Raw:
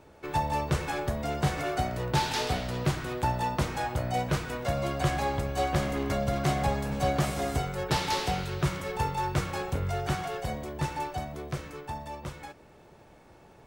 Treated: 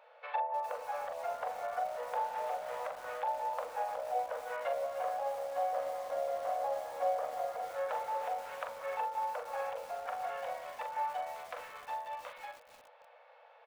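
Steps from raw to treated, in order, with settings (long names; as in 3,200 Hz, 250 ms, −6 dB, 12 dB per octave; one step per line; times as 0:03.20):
low-pass filter 3,500 Hz 24 dB per octave
treble cut that deepens with the level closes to 720 Hz, closed at −26 dBFS
linear-phase brick-wall high-pass 460 Hz
double-tracking delay 42 ms −6.5 dB
feedback echo at a low word length 302 ms, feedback 80%, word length 7 bits, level −12.5 dB
level −2 dB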